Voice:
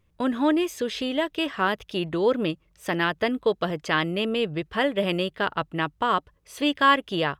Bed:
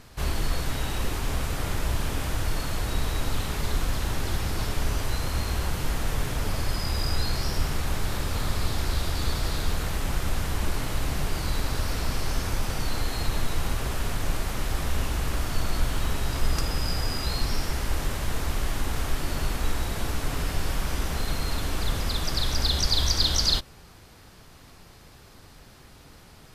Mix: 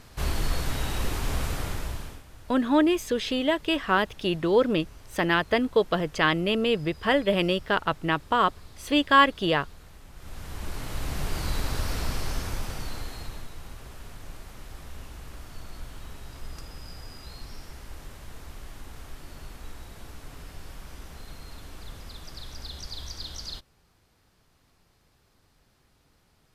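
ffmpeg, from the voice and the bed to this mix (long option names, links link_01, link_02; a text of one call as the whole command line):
ffmpeg -i stem1.wav -i stem2.wav -filter_complex "[0:a]adelay=2300,volume=1dB[link_01];[1:a]volume=19dB,afade=type=out:start_time=1.47:duration=0.76:silence=0.0944061,afade=type=in:start_time=10.14:duration=1.27:silence=0.105925,afade=type=out:start_time=12.02:duration=1.49:silence=0.211349[link_02];[link_01][link_02]amix=inputs=2:normalize=0" out.wav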